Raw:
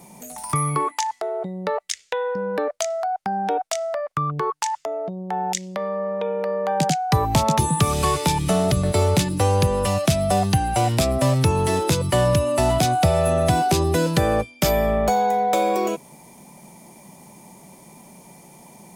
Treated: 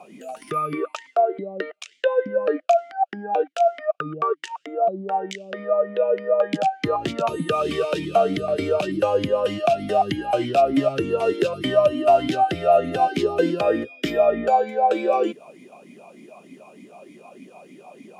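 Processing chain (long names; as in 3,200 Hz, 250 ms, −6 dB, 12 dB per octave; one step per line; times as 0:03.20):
in parallel at +2.5 dB: downward compressor, threshold −27 dBFS, peak gain reduction 13.5 dB
on the sum: wrong playback speed 24 fps film run at 25 fps
formant filter swept between two vowels a-i 3.3 Hz
level +7.5 dB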